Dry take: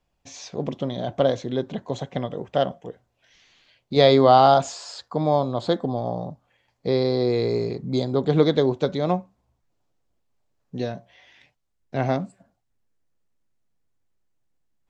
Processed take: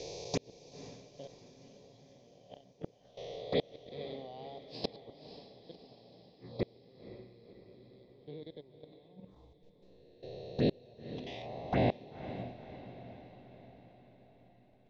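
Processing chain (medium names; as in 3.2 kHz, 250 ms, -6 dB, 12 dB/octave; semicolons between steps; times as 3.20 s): reverse spectral sustain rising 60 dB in 1.23 s; low-pass 5.1 kHz 24 dB/octave; peaking EQ 1.5 kHz -8.5 dB 0.28 oct; level held to a coarse grid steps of 17 dB; touch-sensitive phaser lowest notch 180 Hz, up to 1.3 kHz, full sweep at -32 dBFS; inverted gate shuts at -27 dBFS, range -36 dB; echo that smears into a reverb 517 ms, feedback 56%, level -12 dB; trim +9 dB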